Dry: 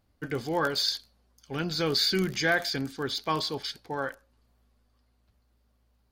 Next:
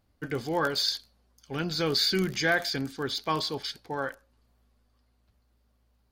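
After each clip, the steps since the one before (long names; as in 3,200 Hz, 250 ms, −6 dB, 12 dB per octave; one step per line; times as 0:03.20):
no processing that can be heard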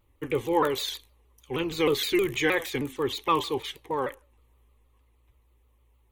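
phaser with its sweep stopped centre 1,000 Hz, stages 8
pitch modulation by a square or saw wave saw down 6.4 Hz, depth 160 cents
level +6.5 dB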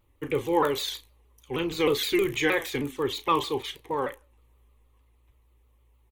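double-tracking delay 35 ms −12.5 dB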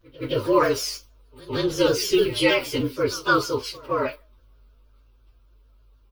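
partials spread apart or drawn together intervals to 113%
echo ahead of the sound 168 ms −20.5 dB
level +7.5 dB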